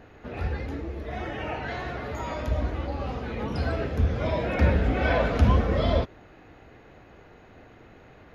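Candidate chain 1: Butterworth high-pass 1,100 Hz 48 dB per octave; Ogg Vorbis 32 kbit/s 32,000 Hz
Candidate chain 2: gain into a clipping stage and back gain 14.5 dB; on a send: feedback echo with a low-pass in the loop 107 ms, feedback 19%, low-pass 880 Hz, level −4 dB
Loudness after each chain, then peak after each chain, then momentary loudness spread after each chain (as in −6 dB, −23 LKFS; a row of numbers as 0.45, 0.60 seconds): −37.5, −26.5 LKFS; −18.0, −10.0 dBFS; 25, 11 LU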